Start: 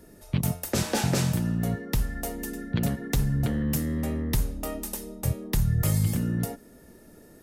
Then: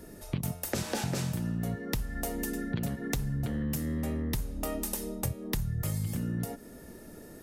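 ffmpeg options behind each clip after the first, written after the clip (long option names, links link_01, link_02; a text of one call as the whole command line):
ffmpeg -i in.wav -af "acompressor=threshold=-33dB:ratio=6,volume=3.5dB" out.wav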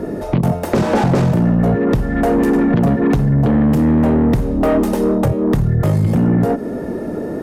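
ffmpeg -i in.wav -filter_complex "[0:a]tiltshelf=frequency=920:gain=10,asplit=2[link_01][link_02];[link_02]highpass=frequency=720:poles=1,volume=28dB,asoftclip=type=tanh:threshold=-9.5dB[link_03];[link_01][link_03]amix=inputs=2:normalize=0,lowpass=frequency=1500:poles=1,volume=-6dB,volume=5dB" out.wav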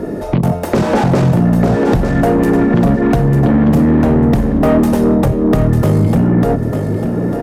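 ffmpeg -i in.wav -filter_complex "[0:a]asplit=2[link_01][link_02];[link_02]aeval=exprs='clip(val(0),-1,0.251)':channel_layout=same,volume=-11.5dB[link_03];[link_01][link_03]amix=inputs=2:normalize=0,aecho=1:1:897|1794|2691:0.473|0.114|0.0273" out.wav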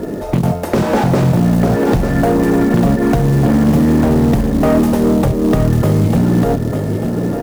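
ffmpeg -i in.wav -af "acrusher=bits=6:mode=log:mix=0:aa=0.000001,volume=-1dB" out.wav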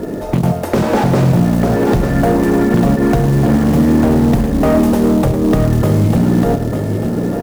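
ffmpeg -i in.wav -af "aecho=1:1:106:0.282" out.wav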